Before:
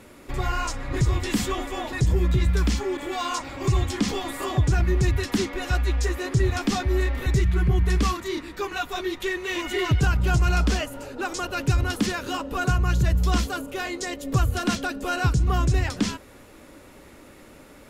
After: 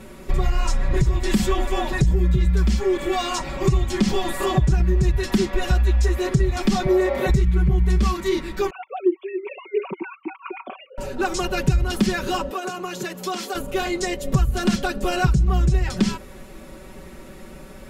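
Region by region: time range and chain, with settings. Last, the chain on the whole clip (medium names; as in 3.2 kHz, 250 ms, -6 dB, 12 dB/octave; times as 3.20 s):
6.86–7.30 s: high-pass 180 Hz + peaking EQ 610 Hz +13 dB 1.1 oct
8.70–10.98 s: formants replaced by sine waves + talking filter a-u 3.5 Hz
12.50–13.55 s: high-pass 300 Hz 24 dB/octave + compression, threshold -29 dBFS
whole clip: bass shelf 200 Hz +10 dB; comb 5.3 ms, depth 85%; compression, threshold -16 dBFS; trim +1.5 dB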